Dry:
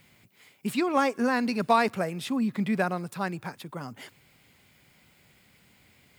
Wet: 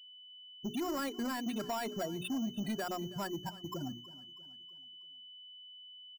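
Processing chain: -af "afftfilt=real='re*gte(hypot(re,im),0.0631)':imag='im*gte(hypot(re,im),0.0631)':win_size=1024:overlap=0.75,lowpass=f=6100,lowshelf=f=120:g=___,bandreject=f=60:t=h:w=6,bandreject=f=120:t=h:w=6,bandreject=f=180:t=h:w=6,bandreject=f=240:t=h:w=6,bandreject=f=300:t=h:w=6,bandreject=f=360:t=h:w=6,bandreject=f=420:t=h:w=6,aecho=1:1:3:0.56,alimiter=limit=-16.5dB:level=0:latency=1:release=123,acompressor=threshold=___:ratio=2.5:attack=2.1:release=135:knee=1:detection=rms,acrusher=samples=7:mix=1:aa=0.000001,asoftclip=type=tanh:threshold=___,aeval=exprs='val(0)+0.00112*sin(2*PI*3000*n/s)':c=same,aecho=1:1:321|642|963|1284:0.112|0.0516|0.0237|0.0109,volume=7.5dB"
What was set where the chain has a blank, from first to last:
7, -44dB, -38dB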